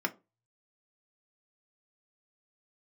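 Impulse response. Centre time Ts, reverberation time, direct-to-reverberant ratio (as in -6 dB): 4 ms, 0.30 s, 1.5 dB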